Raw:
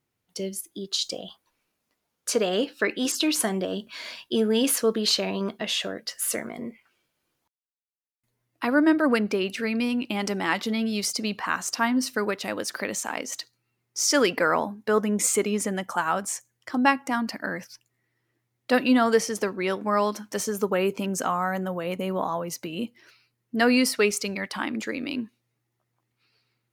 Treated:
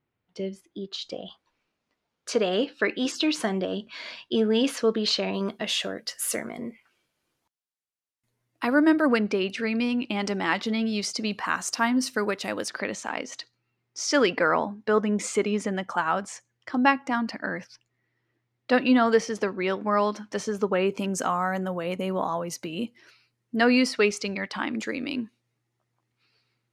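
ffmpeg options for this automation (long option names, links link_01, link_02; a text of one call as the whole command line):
ffmpeg -i in.wav -af "asetnsamples=nb_out_samples=441:pad=0,asendcmd='1.26 lowpass f 4700;5.34 lowpass f 12000;9.08 lowpass f 6000;11.31 lowpass f 11000;12.68 lowpass f 4600;20.92 lowpass f 9800;23.57 lowpass f 5400;24.71 lowpass f 9300',lowpass=2700" out.wav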